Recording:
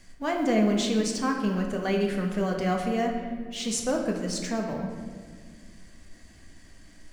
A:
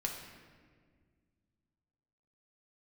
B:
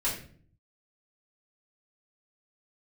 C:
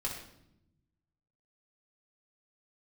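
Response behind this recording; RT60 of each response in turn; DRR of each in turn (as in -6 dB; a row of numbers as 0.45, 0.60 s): A; 1.8, 0.50, 0.80 s; 0.5, -7.5, -3.5 dB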